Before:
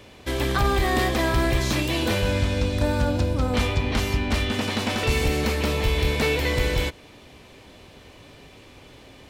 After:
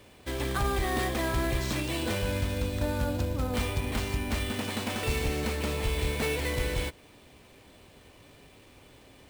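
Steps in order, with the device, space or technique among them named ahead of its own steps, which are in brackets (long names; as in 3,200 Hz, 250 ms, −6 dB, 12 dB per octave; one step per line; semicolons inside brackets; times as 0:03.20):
early companding sampler (sample-rate reduction 12,000 Hz, jitter 0%; log-companded quantiser 6 bits)
level −7 dB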